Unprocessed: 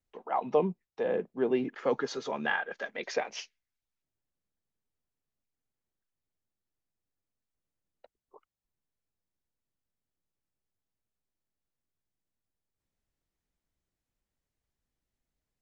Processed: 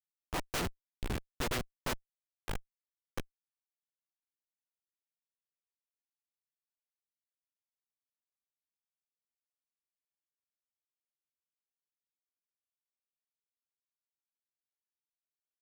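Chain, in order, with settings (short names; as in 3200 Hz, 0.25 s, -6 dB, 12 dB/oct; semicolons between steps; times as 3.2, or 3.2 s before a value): spectral contrast lowered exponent 0.12; spectral noise reduction 23 dB; Schmitt trigger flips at -24.5 dBFS; gain +7.5 dB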